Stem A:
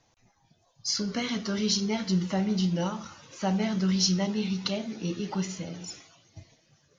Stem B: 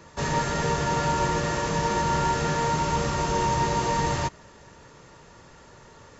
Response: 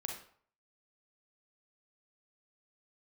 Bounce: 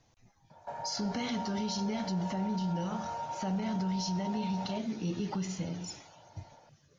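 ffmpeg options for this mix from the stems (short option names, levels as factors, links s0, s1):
-filter_complex "[0:a]lowshelf=f=240:g=7,alimiter=limit=0.119:level=0:latency=1:release=161,volume=0.708[s0];[1:a]aecho=1:1:1.3:0.62,acompressor=threshold=0.0355:ratio=3,bandpass=f=730:t=q:w=3:csg=0,adelay=500,volume=0.841[s1];[s0][s1]amix=inputs=2:normalize=0,alimiter=level_in=1.26:limit=0.0631:level=0:latency=1:release=42,volume=0.794"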